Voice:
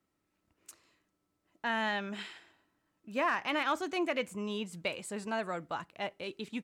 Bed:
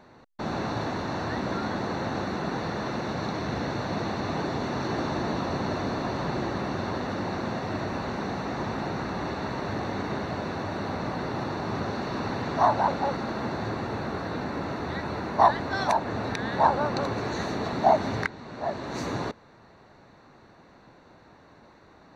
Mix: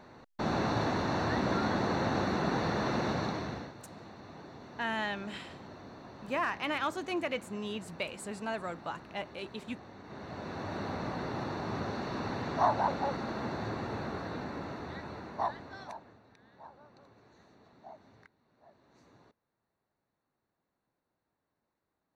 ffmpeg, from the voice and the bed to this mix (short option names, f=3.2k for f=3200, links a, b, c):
-filter_complex "[0:a]adelay=3150,volume=-1.5dB[a];[1:a]volume=13.5dB,afade=t=out:st=3.07:d=0.66:silence=0.112202,afade=t=in:st=10.03:d=0.73:silence=0.199526,afade=t=out:st=14:d=2.2:silence=0.0530884[b];[a][b]amix=inputs=2:normalize=0"